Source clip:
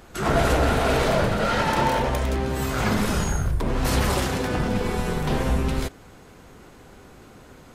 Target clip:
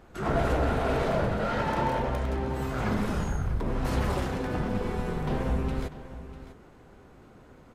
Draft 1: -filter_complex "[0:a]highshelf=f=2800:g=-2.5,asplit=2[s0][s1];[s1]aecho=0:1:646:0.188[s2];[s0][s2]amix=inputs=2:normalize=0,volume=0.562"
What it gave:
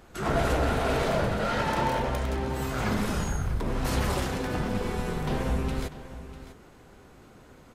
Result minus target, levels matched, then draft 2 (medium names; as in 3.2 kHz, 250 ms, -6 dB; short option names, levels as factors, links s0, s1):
4 kHz band +5.0 dB
-filter_complex "[0:a]highshelf=f=2800:g=-11.5,asplit=2[s0][s1];[s1]aecho=0:1:646:0.188[s2];[s0][s2]amix=inputs=2:normalize=0,volume=0.562"